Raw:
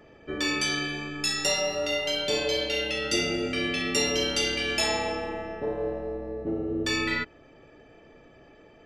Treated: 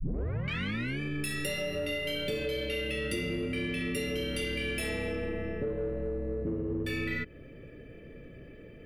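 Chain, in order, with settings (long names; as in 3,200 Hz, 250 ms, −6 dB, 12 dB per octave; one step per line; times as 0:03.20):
turntable start at the beginning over 1.00 s
drawn EQ curve 170 Hz 0 dB, 340 Hz −3 dB, 530 Hz 0 dB, 800 Hz −20 dB, 2,100 Hz 0 dB, 6,900 Hz −11 dB, 10,000 Hz +14 dB
in parallel at −3 dB: soft clipping −33 dBFS, distortion −8 dB
on the sum: bass and treble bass +6 dB, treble −9 dB
downward compressor, threshold −30 dBFS, peak gain reduction 11 dB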